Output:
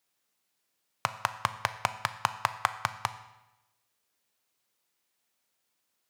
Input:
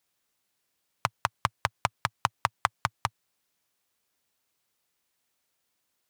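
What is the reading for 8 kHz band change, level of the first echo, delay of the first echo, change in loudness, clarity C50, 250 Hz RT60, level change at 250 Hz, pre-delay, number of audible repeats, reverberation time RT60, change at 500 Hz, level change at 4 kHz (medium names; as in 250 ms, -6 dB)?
-0.5 dB, no echo, no echo, -1.0 dB, 13.0 dB, 1.0 s, -2.5 dB, 9 ms, no echo, 0.95 s, -1.0 dB, -0.5 dB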